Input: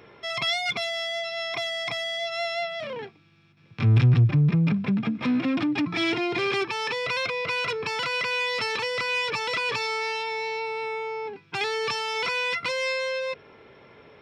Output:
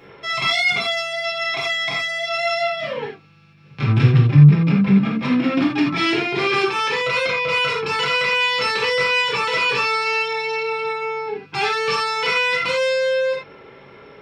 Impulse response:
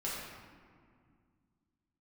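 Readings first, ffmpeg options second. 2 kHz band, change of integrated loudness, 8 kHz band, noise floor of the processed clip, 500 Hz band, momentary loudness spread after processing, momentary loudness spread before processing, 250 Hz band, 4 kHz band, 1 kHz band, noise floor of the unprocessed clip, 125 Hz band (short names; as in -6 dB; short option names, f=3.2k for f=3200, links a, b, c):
+7.5 dB, +7.0 dB, +5.0 dB, -45 dBFS, +7.5 dB, 8 LU, 9 LU, +7.5 dB, +6.5 dB, +8.0 dB, -55 dBFS, +6.5 dB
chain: -filter_complex "[1:a]atrim=start_sample=2205,atrim=end_sample=4410[a];[0:a][a]afir=irnorm=-1:irlink=0,volume=5.5dB"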